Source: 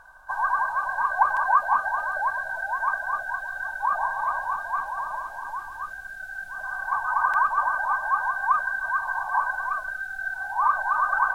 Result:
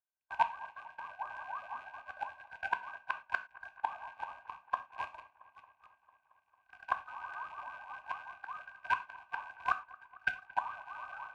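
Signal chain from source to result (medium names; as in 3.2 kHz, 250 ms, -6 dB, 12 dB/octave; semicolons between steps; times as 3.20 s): rattle on loud lows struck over -57 dBFS, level -29 dBFS; Bessel low-pass 4.6 kHz, order 2; gate -26 dBFS, range -55 dB; high-pass 64 Hz 12 dB/octave; peaking EQ 1.2 kHz -9 dB 0.97 oct; level rider gain up to 8.5 dB; inverted gate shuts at -22 dBFS, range -29 dB; feedback echo behind a low-pass 225 ms, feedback 76%, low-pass 2.4 kHz, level -21.5 dB; on a send at -9.5 dB: reverberation, pre-delay 3 ms; on the sum: trim +5.5 dB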